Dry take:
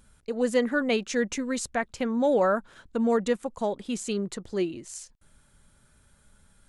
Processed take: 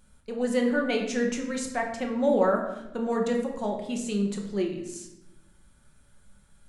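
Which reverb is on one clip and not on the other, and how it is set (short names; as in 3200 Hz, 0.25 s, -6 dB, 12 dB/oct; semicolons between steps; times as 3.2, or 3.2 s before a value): shoebox room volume 310 m³, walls mixed, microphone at 1 m; gain -3.5 dB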